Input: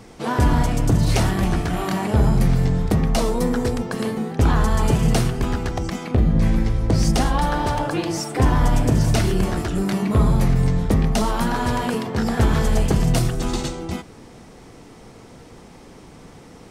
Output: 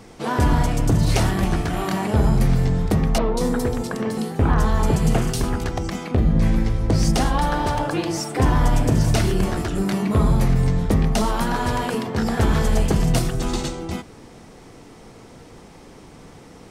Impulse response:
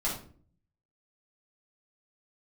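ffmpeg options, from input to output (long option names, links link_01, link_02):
-filter_complex "[0:a]bandreject=frequency=60:width_type=h:width=6,bandreject=frequency=120:width_type=h:width=6,bandreject=frequency=180:width_type=h:width=6,bandreject=frequency=240:width_type=h:width=6,asettb=1/sr,asplit=3[link_01][link_02][link_03];[link_01]atrim=end=3.184[link_04];[link_02]atrim=start=3.18:end=5.64,asetpts=PTS-STARTPTS,afade=type=in:duration=0.004:curve=qsin,afade=type=out:start_time=2.456:duration=0.004:curve=qsin,acrossover=split=2900[link_05][link_06];[link_06]adelay=190[link_07];[link_05][link_07]amix=inputs=2:normalize=0,atrim=end_sample=108486[link_08];[link_03]atrim=start=5.636[link_09];[link_04][link_08]acrossfade=duration=0.004:curve1=hsin:curve2=qsin[link_10];[link_10][link_09]acrossfade=duration=0.004:curve1=qsin:curve2=hsin"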